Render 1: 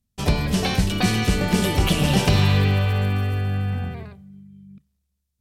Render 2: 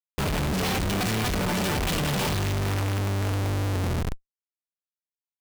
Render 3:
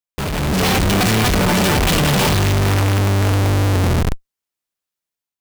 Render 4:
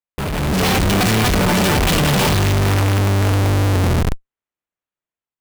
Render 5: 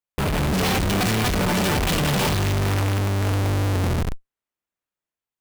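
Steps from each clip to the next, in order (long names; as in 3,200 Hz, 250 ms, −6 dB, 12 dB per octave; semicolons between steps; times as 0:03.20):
comparator with hysteresis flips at −32 dBFS; level −4 dB
automatic gain control gain up to 7.5 dB; level +3 dB
adaptive Wiener filter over 9 samples
brickwall limiter −19.5 dBFS, peak gain reduction 9.5 dB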